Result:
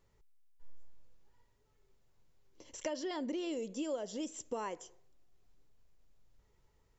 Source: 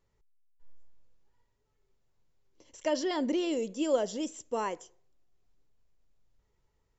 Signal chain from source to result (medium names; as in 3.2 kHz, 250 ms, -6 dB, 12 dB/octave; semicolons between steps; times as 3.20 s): compression 4:1, threshold -41 dBFS, peak gain reduction 16.5 dB; trim +3.5 dB